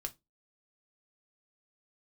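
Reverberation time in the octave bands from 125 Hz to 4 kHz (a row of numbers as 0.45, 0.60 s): 0.25, 0.25, 0.20, 0.20, 0.15, 0.15 s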